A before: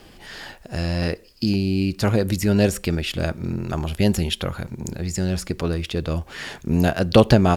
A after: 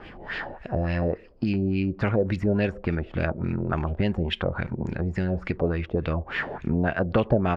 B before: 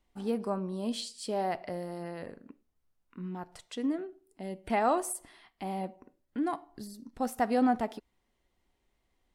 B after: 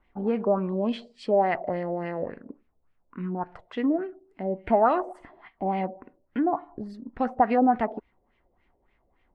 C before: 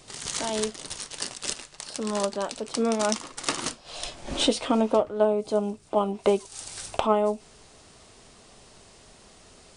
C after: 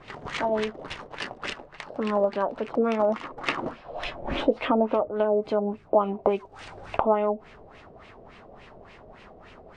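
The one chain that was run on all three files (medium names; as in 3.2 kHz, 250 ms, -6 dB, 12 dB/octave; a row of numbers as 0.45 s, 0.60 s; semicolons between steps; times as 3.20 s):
compression 2.5:1, threshold -28 dBFS; LFO low-pass sine 3.5 Hz 560–2500 Hz; normalise loudness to -27 LUFS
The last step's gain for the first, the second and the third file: +3.0 dB, +6.5 dB, +3.5 dB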